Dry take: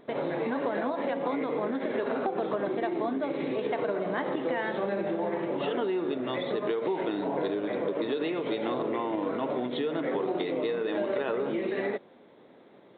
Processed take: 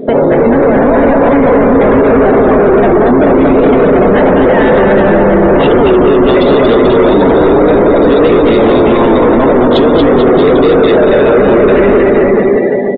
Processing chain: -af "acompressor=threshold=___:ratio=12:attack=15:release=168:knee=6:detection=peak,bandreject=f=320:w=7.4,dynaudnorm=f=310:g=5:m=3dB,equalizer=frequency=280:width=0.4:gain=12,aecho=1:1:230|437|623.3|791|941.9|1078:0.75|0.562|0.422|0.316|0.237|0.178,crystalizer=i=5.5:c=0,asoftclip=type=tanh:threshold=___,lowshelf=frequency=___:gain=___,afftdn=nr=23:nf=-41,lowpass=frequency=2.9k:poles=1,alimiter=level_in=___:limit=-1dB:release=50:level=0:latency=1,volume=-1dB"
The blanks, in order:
-36dB, -25.5dB, 60, 10.5, 25.5dB